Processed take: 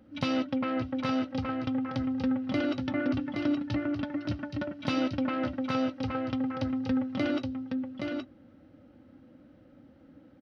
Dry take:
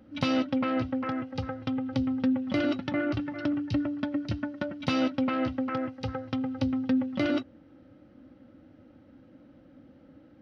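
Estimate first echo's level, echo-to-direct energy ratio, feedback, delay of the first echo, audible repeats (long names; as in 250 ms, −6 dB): −4.5 dB, −4.5 dB, repeats not evenly spaced, 821 ms, 1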